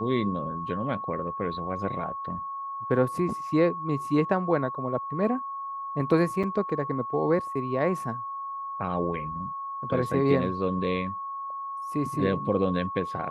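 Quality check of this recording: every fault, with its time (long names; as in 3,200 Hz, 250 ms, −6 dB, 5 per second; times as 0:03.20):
whistle 1,100 Hz −32 dBFS
0:06.43–0:06.44: drop-out 5.8 ms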